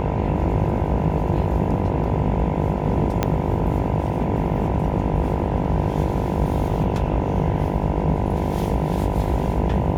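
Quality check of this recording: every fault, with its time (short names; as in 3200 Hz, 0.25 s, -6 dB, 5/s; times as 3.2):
buzz 50 Hz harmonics 20 -26 dBFS
3.23 pop -5 dBFS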